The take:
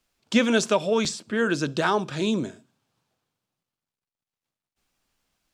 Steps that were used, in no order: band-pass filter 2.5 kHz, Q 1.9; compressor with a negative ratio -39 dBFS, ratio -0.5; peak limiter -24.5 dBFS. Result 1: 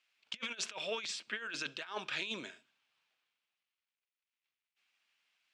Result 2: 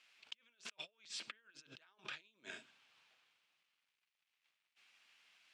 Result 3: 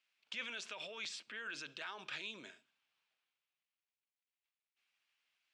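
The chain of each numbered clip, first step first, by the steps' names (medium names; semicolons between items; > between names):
band-pass filter > compressor with a negative ratio > peak limiter; compressor with a negative ratio > peak limiter > band-pass filter; peak limiter > band-pass filter > compressor with a negative ratio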